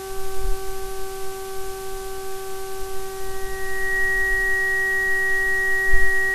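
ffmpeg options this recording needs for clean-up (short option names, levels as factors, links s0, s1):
-af "adeclick=t=4,bandreject=f=384.5:t=h:w=4,bandreject=f=769:t=h:w=4,bandreject=f=1153.5:t=h:w=4,bandreject=f=1538:t=h:w=4,bandreject=f=1900:w=30,afwtdn=0.011"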